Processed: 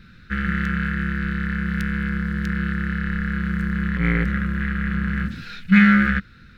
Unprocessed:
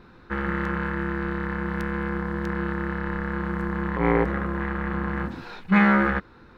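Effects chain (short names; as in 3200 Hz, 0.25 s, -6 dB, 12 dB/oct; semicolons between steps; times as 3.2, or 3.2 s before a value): EQ curve 200 Hz 0 dB, 350 Hz -17 dB, 510 Hz -16 dB, 940 Hz -28 dB, 1400 Hz -2 dB, 3000 Hz +1 dB; gain +6 dB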